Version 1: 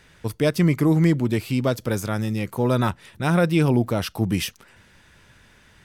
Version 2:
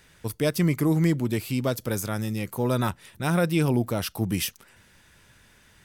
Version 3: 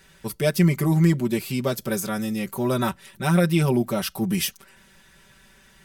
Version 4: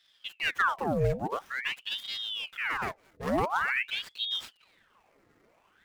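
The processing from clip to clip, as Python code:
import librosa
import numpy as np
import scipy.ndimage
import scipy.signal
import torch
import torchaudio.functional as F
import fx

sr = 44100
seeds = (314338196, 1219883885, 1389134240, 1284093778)

y1 = fx.high_shelf(x, sr, hz=7800.0, db=11.0)
y1 = F.gain(torch.from_numpy(y1), -4.0).numpy()
y2 = y1 + 0.93 * np.pad(y1, (int(5.2 * sr / 1000.0), 0))[:len(y1)]
y3 = scipy.signal.medfilt(y2, 15)
y3 = fx.ring_lfo(y3, sr, carrier_hz=1900.0, swing_pct=85, hz=0.47)
y3 = F.gain(torch.from_numpy(y3), -6.0).numpy()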